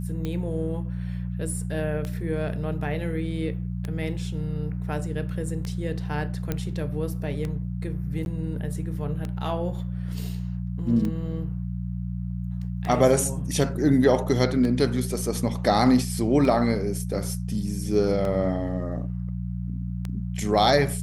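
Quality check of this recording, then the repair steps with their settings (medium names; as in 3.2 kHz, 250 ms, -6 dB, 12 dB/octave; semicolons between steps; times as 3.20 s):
hum 60 Hz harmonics 3 -30 dBFS
tick 33 1/3 rpm -18 dBFS
6.52 s: pop -13 dBFS
8.25–8.26 s: dropout 11 ms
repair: de-click; de-hum 60 Hz, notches 3; interpolate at 8.25 s, 11 ms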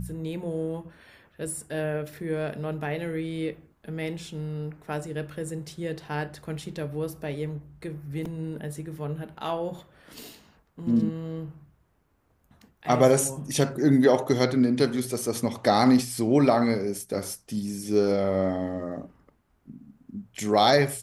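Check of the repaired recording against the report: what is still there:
nothing left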